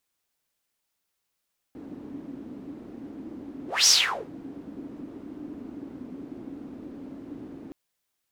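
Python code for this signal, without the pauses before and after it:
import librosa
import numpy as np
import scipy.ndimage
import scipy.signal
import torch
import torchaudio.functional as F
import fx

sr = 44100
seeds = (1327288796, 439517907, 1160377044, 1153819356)

y = fx.whoosh(sr, seeds[0], length_s=5.97, peak_s=2.12, rise_s=0.22, fall_s=0.45, ends_hz=280.0, peak_hz=5800.0, q=6.0, swell_db=23.0)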